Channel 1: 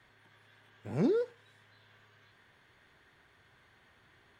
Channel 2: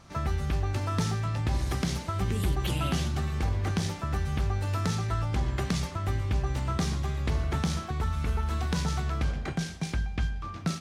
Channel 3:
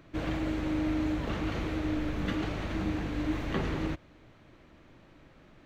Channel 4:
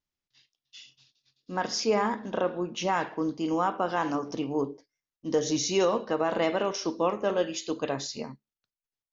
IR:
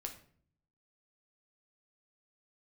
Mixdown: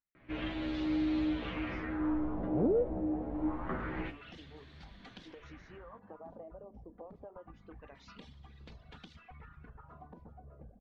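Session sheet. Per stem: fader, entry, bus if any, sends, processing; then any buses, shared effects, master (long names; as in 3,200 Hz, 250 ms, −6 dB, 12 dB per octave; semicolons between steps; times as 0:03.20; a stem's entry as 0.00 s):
−4.5 dB, 1.60 s, no bus, no send, high-shelf EQ 3,600 Hz +10.5 dB
−13.0 dB, 1.40 s, bus A, no send, lower of the sound and its delayed copy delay 4.1 ms
+0.5 dB, 0.15 s, no bus, no send, stiff-string resonator 60 Hz, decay 0.29 s, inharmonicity 0.002
−11.5 dB, 0.00 s, bus A, no send, downward compressor 4 to 1, threshold −28 dBFS, peak gain reduction 7.5 dB
bus A: 0.0 dB, reverb reduction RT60 1.6 s; downward compressor 4 to 1, threshold −51 dBFS, peak gain reduction 13 dB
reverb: not used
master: auto-filter low-pass sine 0.26 Hz 600–4,200 Hz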